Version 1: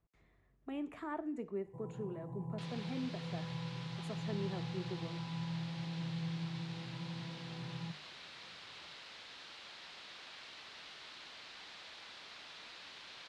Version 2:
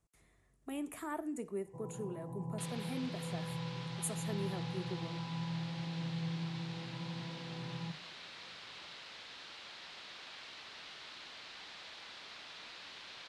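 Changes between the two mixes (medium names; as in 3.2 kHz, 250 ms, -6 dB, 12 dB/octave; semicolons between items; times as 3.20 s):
speech: remove distance through air 200 m; first sound: add bass shelf 83 Hz -10.5 dB; reverb: on, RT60 0.40 s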